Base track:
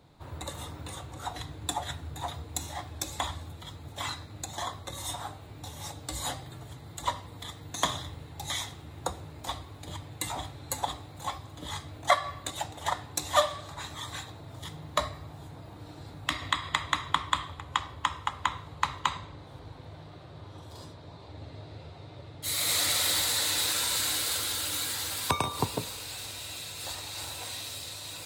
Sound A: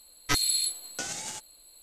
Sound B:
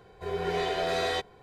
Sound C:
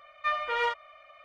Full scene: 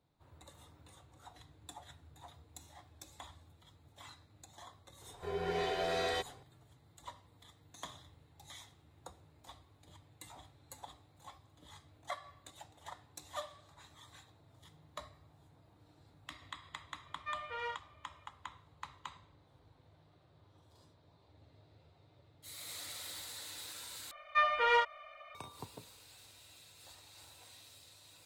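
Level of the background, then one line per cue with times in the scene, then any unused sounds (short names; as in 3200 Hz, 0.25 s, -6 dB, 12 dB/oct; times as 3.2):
base track -19 dB
5.01 add B -6 dB
17.02 add C -12.5 dB
24.11 replace with C
not used: A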